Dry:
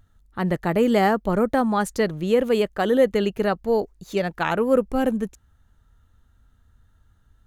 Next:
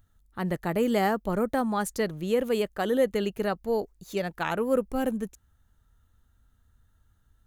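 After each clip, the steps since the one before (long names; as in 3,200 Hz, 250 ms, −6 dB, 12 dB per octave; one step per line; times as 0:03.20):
high-shelf EQ 8,000 Hz +9.5 dB
level −6 dB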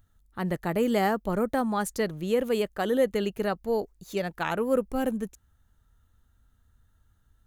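no processing that can be heard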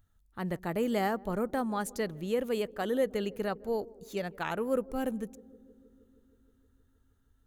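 feedback echo with a band-pass in the loop 157 ms, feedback 82%, band-pass 330 Hz, level −20.5 dB
level −5 dB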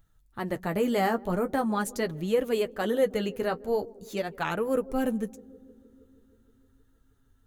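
flanger 0.43 Hz, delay 5.9 ms, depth 6.9 ms, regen −30%
level +8 dB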